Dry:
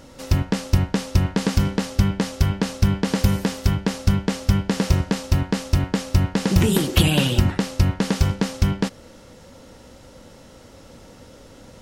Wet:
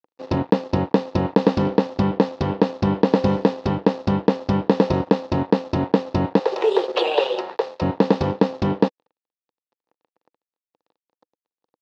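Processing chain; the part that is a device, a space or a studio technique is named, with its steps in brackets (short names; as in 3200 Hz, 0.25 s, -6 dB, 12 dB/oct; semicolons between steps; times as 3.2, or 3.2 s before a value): 6.39–7.82 steep high-pass 370 Hz 96 dB/oct; blown loudspeaker (crossover distortion -35.5 dBFS; speaker cabinet 200–3600 Hz, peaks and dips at 310 Hz +5 dB, 490 Hz +8 dB, 870 Hz +6 dB, 1500 Hz -8 dB, 2200 Hz -10 dB, 3100 Hz -8 dB); gain +5.5 dB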